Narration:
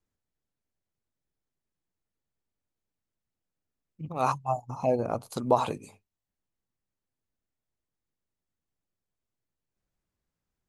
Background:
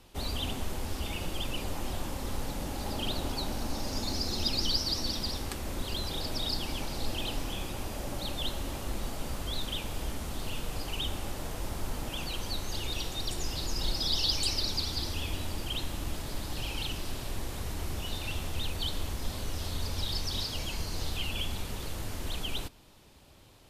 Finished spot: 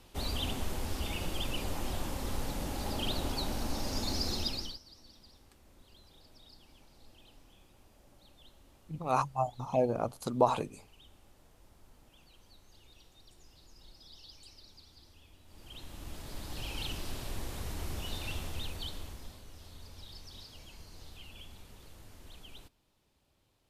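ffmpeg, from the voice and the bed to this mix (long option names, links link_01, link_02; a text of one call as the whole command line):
ffmpeg -i stem1.wav -i stem2.wav -filter_complex "[0:a]adelay=4900,volume=-2.5dB[link_01];[1:a]volume=21dB,afade=type=out:start_time=4.3:duration=0.49:silence=0.0630957,afade=type=in:start_time=15.45:duration=1.43:silence=0.0794328,afade=type=out:start_time=18.3:duration=1.12:silence=0.211349[link_02];[link_01][link_02]amix=inputs=2:normalize=0" out.wav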